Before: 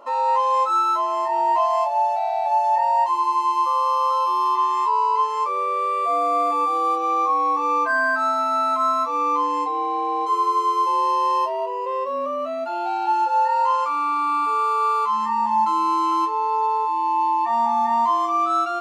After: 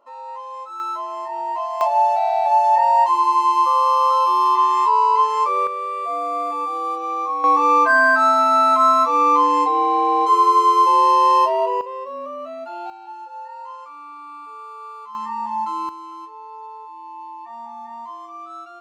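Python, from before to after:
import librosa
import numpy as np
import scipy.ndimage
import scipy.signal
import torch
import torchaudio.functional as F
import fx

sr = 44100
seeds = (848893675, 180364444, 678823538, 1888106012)

y = fx.gain(x, sr, db=fx.steps((0.0, -14.0), (0.8, -6.0), (1.81, 4.0), (5.67, -3.5), (7.44, 6.0), (11.81, -5.5), (12.9, -16.0), (15.15, -5.0), (15.89, -15.5)))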